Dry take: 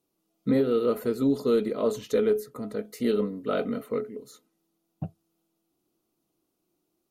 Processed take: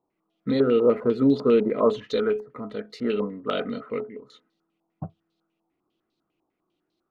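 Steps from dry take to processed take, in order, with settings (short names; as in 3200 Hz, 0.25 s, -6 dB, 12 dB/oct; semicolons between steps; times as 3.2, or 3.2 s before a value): 0.6–1.97 ten-band EQ 125 Hz +5 dB, 250 Hz +4 dB, 500 Hz +4 dB; stepped low-pass 10 Hz 910–4000 Hz; gain -1 dB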